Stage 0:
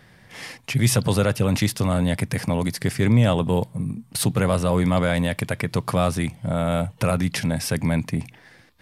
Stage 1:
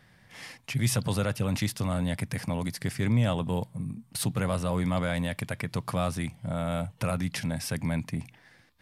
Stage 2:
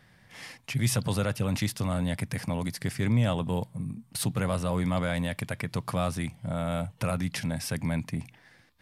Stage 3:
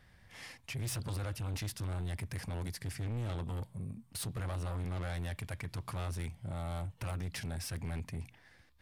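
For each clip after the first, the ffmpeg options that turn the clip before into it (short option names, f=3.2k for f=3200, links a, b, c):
-af "equalizer=f=410:w=1.7:g=-4,volume=-7dB"
-af anull
-af "lowshelf=f=100:t=q:w=1.5:g=9,asoftclip=type=tanh:threshold=-29dB,volume=-5dB"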